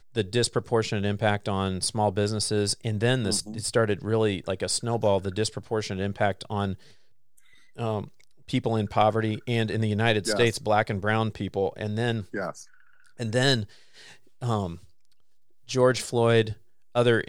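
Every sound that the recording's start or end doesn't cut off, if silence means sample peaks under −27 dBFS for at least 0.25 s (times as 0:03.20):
0:07.79–0:08.04
0:08.50–0:12.50
0:13.20–0:13.64
0:14.43–0:14.72
0:15.71–0:16.52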